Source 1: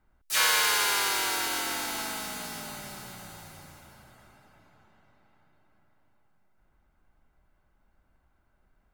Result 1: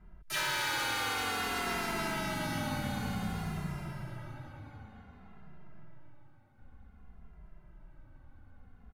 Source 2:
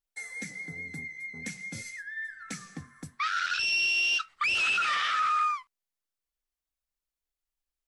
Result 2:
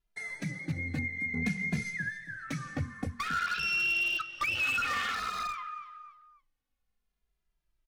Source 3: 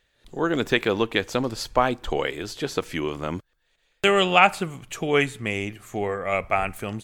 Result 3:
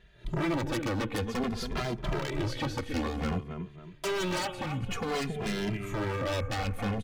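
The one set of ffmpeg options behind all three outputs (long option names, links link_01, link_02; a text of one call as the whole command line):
ffmpeg -i in.wav -filter_complex "[0:a]asplit=2[link_01][link_02];[link_02]alimiter=limit=-12.5dB:level=0:latency=1:release=455,volume=1dB[link_03];[link_01][link_03]amix=inputs=2:normalize=0,bandreject=frequency=7600:width=14,acompressor=threshold=-34dB:ratio=2,bass=frequency=250:gain=8,treble=frequency=4000:gain=-10,aecho=1:1:274|548|822:0.237|0.0759|0.0243,aresample=32000,aresample=44100,aeval=exprs='0.0501*(abs(mod(val(0)/0.0501+3,4)-2)-1)':channel_layout=same,equalizer=frequency=150:width_type=o:width=2.7:gain=3,asplit=2[link_04][link_05];[link_05]adelay=2.5,afreqshift=-0.54[link_06];[link_04][link_06]amix=inputs=2:normalize=1,volume=2.5dB" out.wav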